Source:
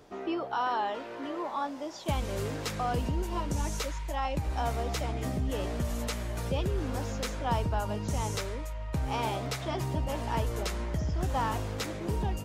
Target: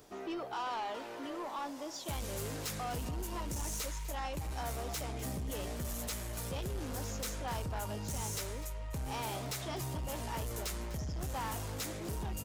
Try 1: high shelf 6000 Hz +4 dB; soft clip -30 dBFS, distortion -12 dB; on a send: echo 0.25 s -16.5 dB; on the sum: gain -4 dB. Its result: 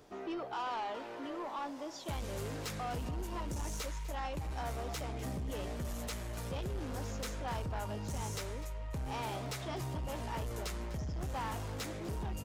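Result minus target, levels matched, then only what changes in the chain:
8000 Hz band -5.0 dB
change: high shelf 6000 Hz +15.5 dB

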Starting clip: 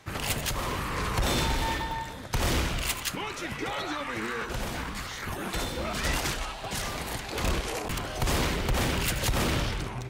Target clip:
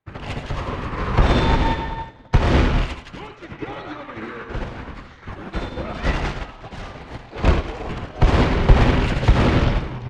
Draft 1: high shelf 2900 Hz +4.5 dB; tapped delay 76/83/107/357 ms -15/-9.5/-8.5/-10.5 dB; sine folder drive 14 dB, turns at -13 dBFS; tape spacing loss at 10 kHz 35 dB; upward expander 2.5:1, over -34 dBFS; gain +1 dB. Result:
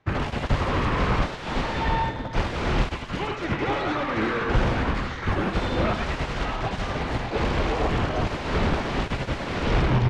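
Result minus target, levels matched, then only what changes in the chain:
sine folder: distortion +24 dB
change: sine folder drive 14 dB, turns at -1.5 dBFS

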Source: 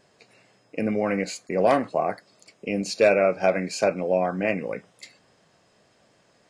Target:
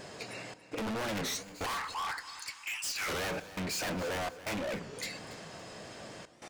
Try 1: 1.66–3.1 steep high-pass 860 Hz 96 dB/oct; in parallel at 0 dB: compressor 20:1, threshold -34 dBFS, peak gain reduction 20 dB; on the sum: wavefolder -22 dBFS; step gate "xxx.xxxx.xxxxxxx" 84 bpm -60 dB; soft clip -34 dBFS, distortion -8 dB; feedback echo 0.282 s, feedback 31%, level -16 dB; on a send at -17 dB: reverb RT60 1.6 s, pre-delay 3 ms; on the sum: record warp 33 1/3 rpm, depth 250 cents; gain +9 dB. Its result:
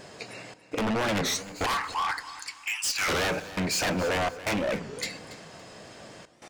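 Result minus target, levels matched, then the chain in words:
compressor: peak gain reduction -9 dB; soft clip: distortion -5 dB
1.66–3.1 steep high-pass 860 Hz 96 dB/oct; in parallel at 0 dB: compressor 20:1, threshold -43.5 dBFS, peak gain reduction 29 dB; on the sum: wavefolder -22 dBFS; step gate "xxx.xxxx.xxxxxxx" 84 bpm -60 dB; soft clip -43 dBFS, distortion -3 dB; feedback echo 0.282 s, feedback 31%, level -16 dB; on a send at -17 dB: reverb RT60 1.6 s, pre-delay 3 ms; on the sum: record warp 33 1/3 rpm, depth 250 cents; gain +9 dB

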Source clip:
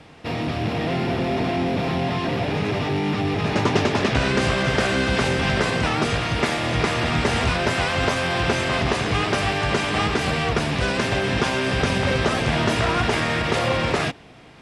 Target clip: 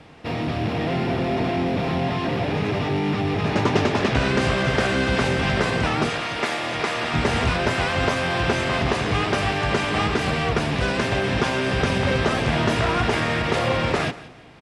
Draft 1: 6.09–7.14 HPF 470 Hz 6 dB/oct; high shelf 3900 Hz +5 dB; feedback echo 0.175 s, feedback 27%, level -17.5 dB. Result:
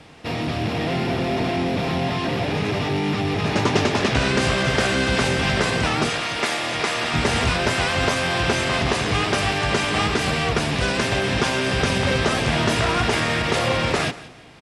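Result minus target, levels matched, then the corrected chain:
8000 Hz band +6.0 dB
6.09–7.14 HPF 470 Hz 6 dB/oct; high shelf 3900 Hz -4 dB; feedback echo 0.175 s, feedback 27%, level -17.5 dB

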